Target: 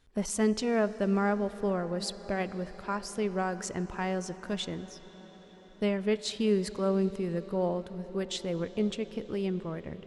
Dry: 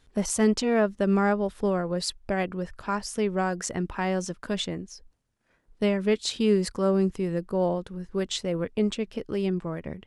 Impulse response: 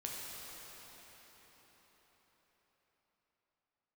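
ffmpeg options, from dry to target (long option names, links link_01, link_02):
-filter_complex "[0:a]asplit=2[link_01][link_02];[1:a]atrim=start_sample=2205,asetrate=31311,aresample=44100,lowpass=5700[link_03];[link_02][link_03]afir=irnorm=-1:irlink=0,volume=-14.5dB[link_04];[link_01][link_04]amix=inputs=2:normalize=0,volume=-5.5dB"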